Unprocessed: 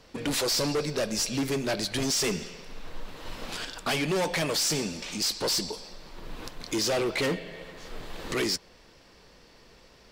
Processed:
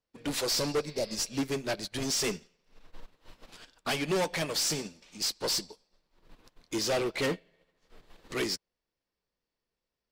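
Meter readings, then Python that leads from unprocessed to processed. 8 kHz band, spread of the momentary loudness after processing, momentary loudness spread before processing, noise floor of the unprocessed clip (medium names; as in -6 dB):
-3.5 dB, 9 LU, 18 LU, -56 dBFS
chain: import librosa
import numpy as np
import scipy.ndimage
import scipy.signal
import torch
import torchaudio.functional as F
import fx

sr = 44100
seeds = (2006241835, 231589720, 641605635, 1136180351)

y = fx.spec_repair(x, sr, seeds[0], start_s=0.91, length_s=0.22, low_hz=940.0, high_hz=5200.0, source='both')
y = fx.upward_expand(y, sr, threshold_db=-47.0, expansion=2.5)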